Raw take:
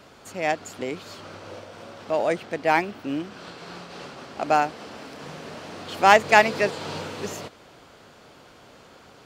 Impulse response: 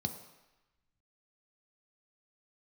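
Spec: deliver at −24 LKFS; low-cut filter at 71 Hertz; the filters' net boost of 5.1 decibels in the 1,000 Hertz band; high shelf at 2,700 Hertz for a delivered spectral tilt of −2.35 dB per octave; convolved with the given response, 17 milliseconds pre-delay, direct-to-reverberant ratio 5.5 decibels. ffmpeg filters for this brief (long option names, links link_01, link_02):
-filter_complex "[0:a]highpass=71,equalizer=frequency=1000:width_type=o:gain=6.5,highshelf=frequency=2700:gain=3,asplit=2[link_01][link_02];[1:a]atrim=start_sample=2205,adelay=17[link_03];[link_02][link_03]afir=irnorm=-1:irlink=0,volume=-7dB[link_04];[link_01][link_04]amix=inputs=2:normalize=0,volume=-6.5dB"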